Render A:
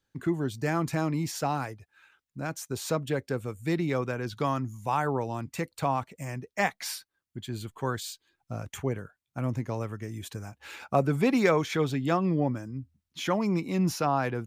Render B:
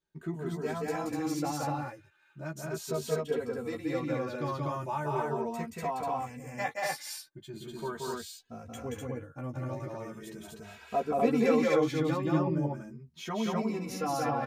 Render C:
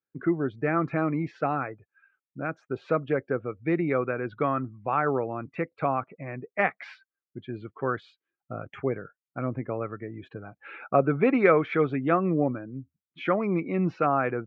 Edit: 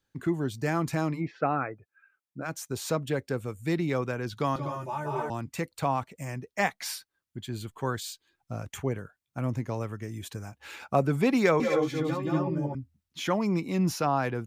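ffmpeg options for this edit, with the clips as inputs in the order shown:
-filter_complex "[1:a]asplit=2[s0][s1];[0:a]asplit=4[s2][s3][s4][s5];[s2]atrim=end=1.22[s6];[2:a]atrim=start=1.12:end=2.5[s7];[s3]atrim=start=2.4:end=4.562[s8];[s0]atrim=start=4.558:end=5.302[s9];[s4]atrim=start=5.298:end=11.602[s10];[s1]atrim=start=11.598:end=12.752[s11];[s5]atrim=start=12.748[s12];[s6][s7]acrossfade=d=0.1:c1=tri:c2=tri[s13];[s13][s8]acrossfade=d=0.1:c1=tri:c2=tri[s14];[s14][s9]acrossfade=d=0.004:c1=hsin:c2=hsin[s15];[s15][s10]acrossfade=d=0.004:c1=hsin:c2=hsin[s16];[s16][s11]acrossfade=d=0.004:c1=hsin:c2=hsin[s17];[s17][s12]acrossfade=d=0.004:c1=hsin:c2=hsin"

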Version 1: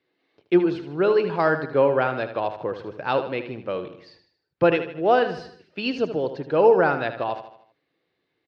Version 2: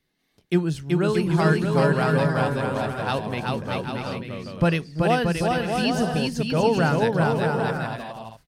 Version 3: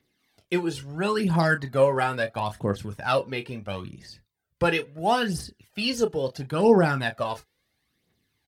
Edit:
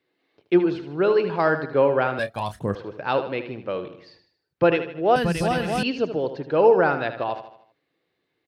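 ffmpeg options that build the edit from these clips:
-filter_complex "[0:a]asplit=3[s0][s1][s2];[s0]atrim=end=2.192[s3];[2:a]atrim=start=2.188:end=2.752[s4];[s1]atrim=start=2.748:end=5.162[s5];[1:a]atrim=start=5.158:end=5.832[s6];[s2]atrim=start=5.828[s7];[s3][s4]acrossfade=d=0.004:c1=hsin:c2=hsin[s8];[s8][s5]acrossfade=d=0.004:c1=hsin:c2=hsin[s9];[s9][s6]acrossfade=d=0.004:c1=hsin:c2=hsin[s10];[s10][s7]acrossfade=d=0.004:c1=hsin:c2=hsin"

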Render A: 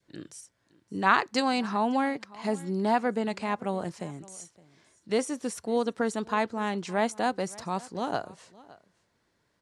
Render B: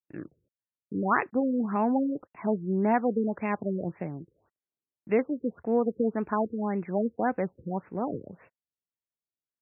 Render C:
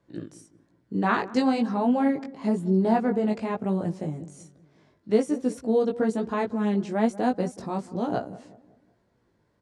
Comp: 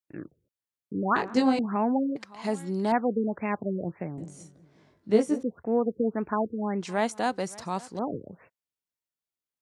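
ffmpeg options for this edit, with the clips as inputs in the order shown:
-filter_complex "[2:a]asplit=2[s0][s1];[0:a]asplit=2[s2][s3];[1:a]asplit=5[s4][s5][s6][s7][s8];[s4]atrim=end=1.162[s9];[s0]atrim=start=1.158:end=1.592[s10];[s5]atrim=start=1.588:end=2.162[s11];[s2]atrim=start=2.158:end=2.922[s12];[s6]atrim=start=2.918:end=4.182[s13];[s1]atrim=start=4.178:end=5.432[s14];[s7]atrim=start=5.428:end=6.812[s15];[s3]atrim=start=6.808:end=7.992[s16];[s8]atrim=start=7.988[s17];[s9][s10]acrossfade=d=0.004:c1=hsin:c2=hsin[s18];[s18][s11]acrossfade=d=0.004:c1=hsin:c2=hsin[s19];[s19][s12]acrossfade=d=0.004:c1=hsin:c2=hsin[s20];[s20][s13]acrossfade=d=0.004:c1=hsin:c2=hsin[s21];[s21][s14]acrossfade=d=0.004:c1=hsin:c2=hsin[s22];[s22][s15]acrossfade=d=0.004:c1=hsin:c2=hsin[s23];[s23][s16]acrossfade=d=0.004:c1=hsin:c2=hsin[s24];[s24][s17]acrossfade=d=0.004:c1=hsin:c2=hsin"

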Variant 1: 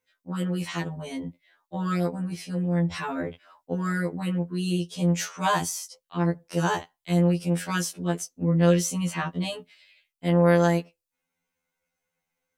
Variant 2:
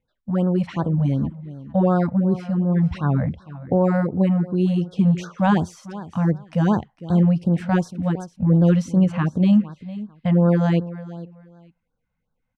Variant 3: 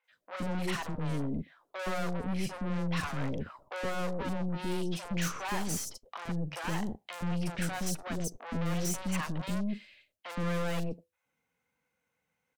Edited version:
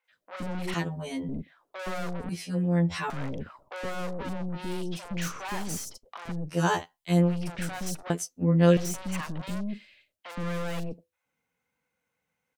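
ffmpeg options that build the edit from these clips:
-filter_complex "[0:a]asplit=4[s0][s1][s2][s3];[2:a]asplit=5[s4][s5][s6][s7][s8];[s4]atrim=end=0.742[s9];[s0]atrim=start=0.738:end=1.292[s10];[s5]atrim=start=1.288:end=2.292[s11];[s1]atrim=start=2.288:end=3.102[s12];[s6]atrim=start=3.098:end=6.61[s13];[s2]atrim=start=6.45:end=7.37[s14];[s7]atrim=start=7.21:end=8.102[s15];[s3]atrim=start=8.098:end=8.772[s16];[s8]atrim=start=8.768[s17];[s9][s10]acrossfade=d=0.004:c1=hsin:c2=hsin[s18];[s18][s11]acrossfade=d=0.004:c1=hsin:c2=hsin[s19];[s19][s12]acrossfade=d=0.004:c1=hsin:c2=hsin[s20];[s20][s13]acrossfade=d=0.004:c1=hsin:c2=hsin[s21];[s21][s14]acrossfade=d=0.16:c1=tri:c2=tri[s22];[s22][s15]acrossfade=d=0.16:c1=tri:c2=tri[s23];[s23][s16]acrossfade=d=0.004:c1=hsin:c2=hsin[s24];[s24][s17]acrossfade=d=0.004:c1=hsin:c2=hsin"

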